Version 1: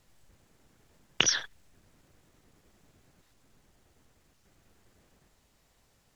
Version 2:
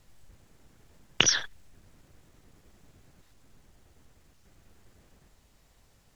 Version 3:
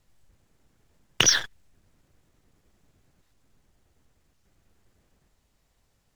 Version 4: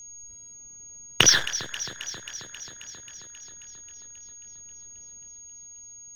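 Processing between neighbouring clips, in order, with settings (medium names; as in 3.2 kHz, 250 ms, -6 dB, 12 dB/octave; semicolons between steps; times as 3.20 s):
bass shelf 110 Hz +6.5 dB; trim +2.5 dB
waveshaping leveller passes 2; trim -3 dB
whistle 6.6 kHz -44 dBFS; echo whose repeats swap between lows and highs 134 ms, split 1.8 kHz, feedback 85%, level -12 dB; trim +2.5 dB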